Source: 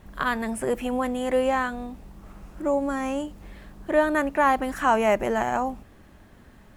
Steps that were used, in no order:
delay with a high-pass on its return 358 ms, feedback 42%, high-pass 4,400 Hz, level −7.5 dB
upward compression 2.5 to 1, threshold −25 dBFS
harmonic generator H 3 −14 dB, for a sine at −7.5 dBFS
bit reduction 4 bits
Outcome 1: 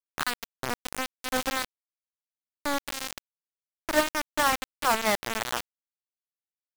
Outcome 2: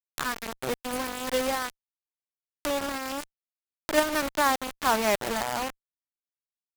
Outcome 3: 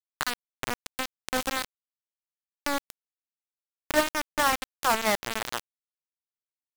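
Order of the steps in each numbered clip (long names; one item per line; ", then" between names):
harmonic generator, then delay with a high-pass on its return, then upward compression, then bit reduction
delay with a high-pass on its return, then bit reduction, then upward compression, then harmonic generator
delay with a high-pass on its return, then harmonic generator, then bit reduction, then upward compression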